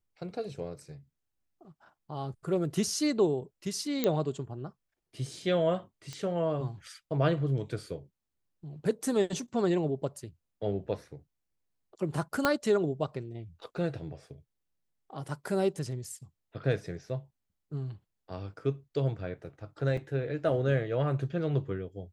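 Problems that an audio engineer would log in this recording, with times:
0:04.04: click −13 dBFS
0:06.13: click −26 dBFS
0:12.45: click −10 dBFS
0:19.97: drop-out 4.5 ms

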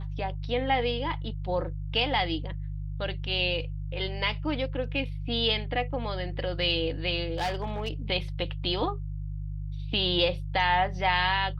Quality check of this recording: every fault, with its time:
mains hum 50 Hz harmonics 3 −34 dBFS
0:07.38–0:07.91: clipping −25 dBFS

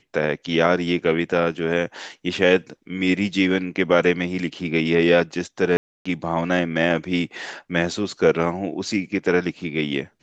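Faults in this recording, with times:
0:05.77–0:06.05: drop-out 285 ms

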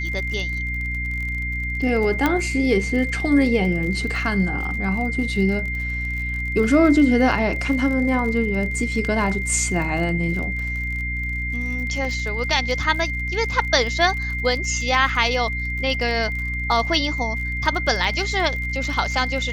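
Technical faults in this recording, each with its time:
surface crackle 45 per second −29 dBFS
mains hum 60 Hz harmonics 5 −28 dBFS
whistle 2,100 Hz −26 dBFS
0:02.26: click −6 dBFS
0:12.05: drop-out 2.1 ms

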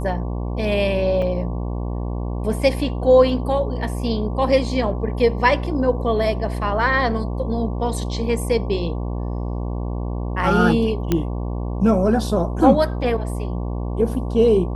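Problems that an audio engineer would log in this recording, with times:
mains buzz 60 Hz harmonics 19 −25 dBFS
0:01.22: drop-out 3.5 ms
0:11.12: click −6 dBFS

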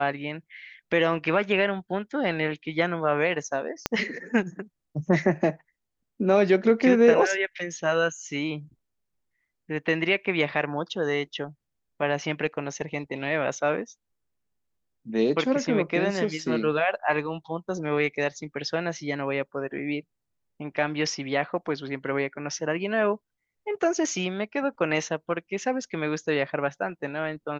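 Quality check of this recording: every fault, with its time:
0:03.86: click −8 dBFS

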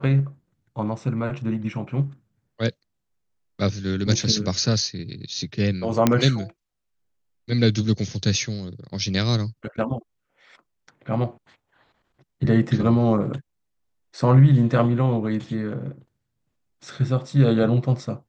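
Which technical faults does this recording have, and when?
0:06.07: click −3 dBFS

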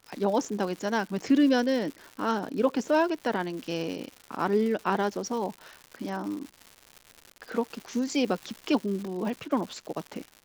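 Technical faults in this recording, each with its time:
surface crackle 220 per second −35 dBFS

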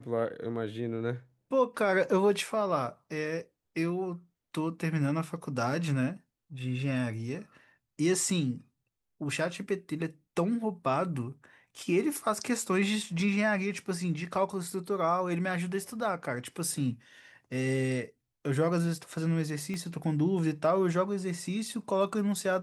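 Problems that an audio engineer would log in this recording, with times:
0:19.74: click −25 dBFS

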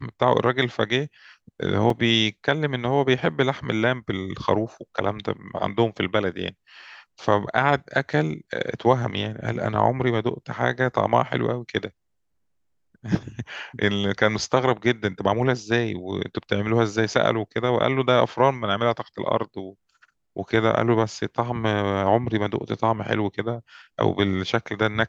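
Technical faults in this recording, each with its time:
0:01.90: drop-out 2.8 ms

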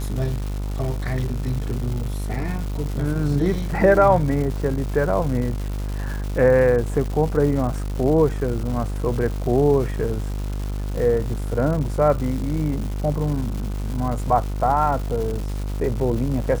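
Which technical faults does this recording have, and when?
mains buzz 50 Hz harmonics 30 −26 dBFS
surface crackle 400 per second −29 dBFS

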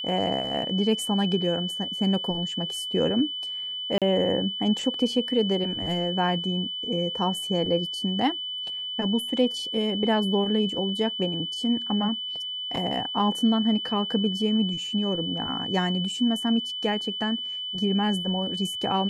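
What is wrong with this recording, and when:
whistle 3,000 Hz −30 dBFS
0:03.98–0:04.02: drop-out 37 ms

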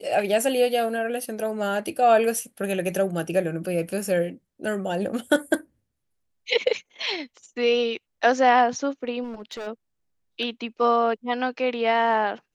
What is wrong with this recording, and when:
0:09.23–0:09.68: clipping −30.5 dBFS

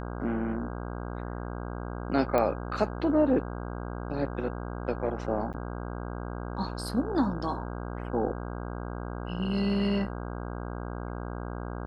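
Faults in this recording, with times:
mains buzz 60 Hz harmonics 27 −36 dBFS
0:02.38: click −14 dBFS
0:05.53–0:05.54: drop-out 8 ms

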